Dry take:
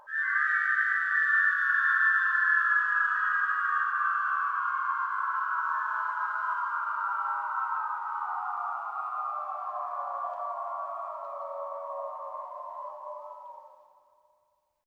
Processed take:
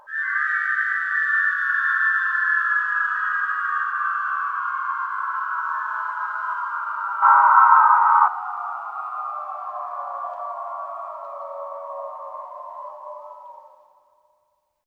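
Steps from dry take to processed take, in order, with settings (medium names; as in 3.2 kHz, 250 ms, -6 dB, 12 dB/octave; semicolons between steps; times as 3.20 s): 7.22–8.28 s: graphic EQ 500/1000/2000 Hz +10/+12/+11 dB; trim +4 dB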